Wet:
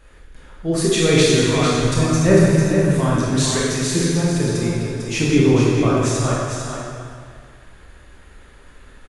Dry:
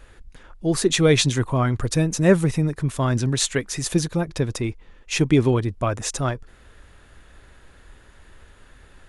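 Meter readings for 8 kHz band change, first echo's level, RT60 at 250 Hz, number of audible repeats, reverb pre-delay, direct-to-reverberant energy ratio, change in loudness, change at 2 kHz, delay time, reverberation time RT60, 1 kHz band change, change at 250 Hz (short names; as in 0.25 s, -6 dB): +3.5 dB, -6.0 dB, 1.9 s, 1, 16 ms, -7.0 dB, +4.5 dB, +4.5 dB, 0.449 s, 2.0 s, +4.5 dB, +5.0 dB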